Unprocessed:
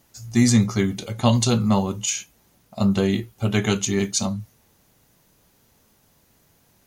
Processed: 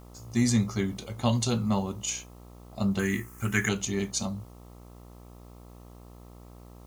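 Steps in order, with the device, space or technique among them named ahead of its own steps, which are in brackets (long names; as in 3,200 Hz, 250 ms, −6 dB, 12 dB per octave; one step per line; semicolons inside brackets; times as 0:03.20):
video cassette with head-switching buzz (hum with harmonics 60 Hz, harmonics 22, −41 dBFS −5 dB per octave; white noise bed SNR 35 dB)
0:02.99–0:03.69: drawn EQ curve 360 Hz 0 dB, 620 Hz −11 dB, 1,800 Hz +14 dB, 3,900 Hz −10 dB, 6,600 Hz +12 dB
level −7.5 dB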